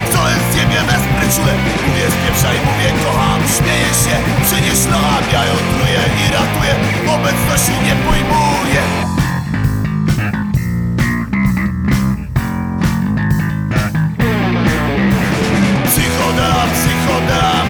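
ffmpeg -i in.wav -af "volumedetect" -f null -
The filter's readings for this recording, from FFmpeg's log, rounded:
mean_volume: -13.5 dB
max_volume: -3.0 dB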